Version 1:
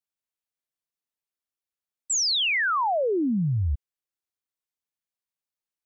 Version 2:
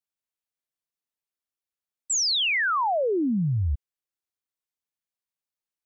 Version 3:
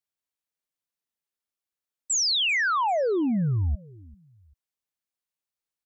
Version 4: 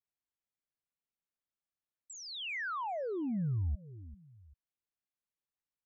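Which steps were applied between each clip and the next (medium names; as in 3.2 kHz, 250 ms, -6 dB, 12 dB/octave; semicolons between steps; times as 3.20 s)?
no audible change
feedback delay 392 ms, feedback 33%, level -23 dB
compression 3:1, threshold -32 dBFS, peak gain reduction 7 dB; tone controls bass +5 dB, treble -13 dB; trim -6 dB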